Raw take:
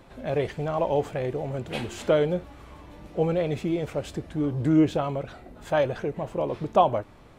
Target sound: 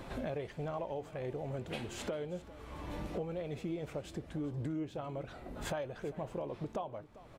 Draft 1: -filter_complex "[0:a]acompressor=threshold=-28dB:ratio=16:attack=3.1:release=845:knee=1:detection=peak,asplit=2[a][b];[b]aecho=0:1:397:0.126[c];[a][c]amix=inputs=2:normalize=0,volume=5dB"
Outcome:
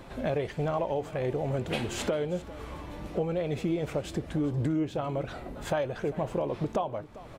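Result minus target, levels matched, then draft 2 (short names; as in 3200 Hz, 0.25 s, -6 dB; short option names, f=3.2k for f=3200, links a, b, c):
compressor: peak gain reduction -9.5 dB
-filter_complex "[0:a]acompressor=threshold=-38dB:ratio=16:attack=3.1:release=845:knee=1:detection=peak,asplit=2[a][b];[b]aecho=0:1:397:0.126[c];[a][c]amix=inputs=2:normalize=0,volume=5dB"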